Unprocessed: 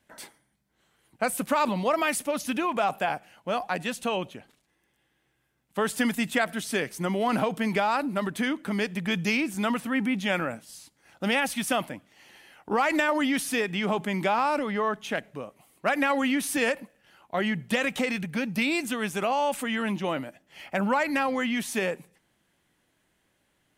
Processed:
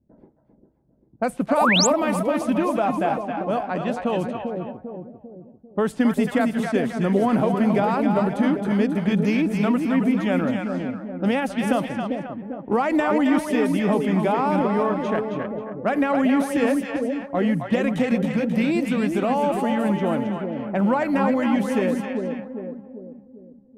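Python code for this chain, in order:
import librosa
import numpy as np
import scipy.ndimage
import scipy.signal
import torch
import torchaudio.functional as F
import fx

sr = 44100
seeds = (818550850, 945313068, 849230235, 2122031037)

y = fx.tilt_shelf(x, sr, db=8.0, hz=1100.0)
y = fx.echo_split(y, sr, split_hz=620.0, low_ms=396, high_ms=269, feedback_pct=52, wet_db=-4.5)
y = fx.env_lowpass(y, sr, base_hz=330.0, full_db=-19.0)
y = fx.spec_paint(y, sr, seeds[0], shape='rise', start_s=1.57, length_s=0.3, low_hz=520.0, high_hz=8200.0, level_db=-19.0)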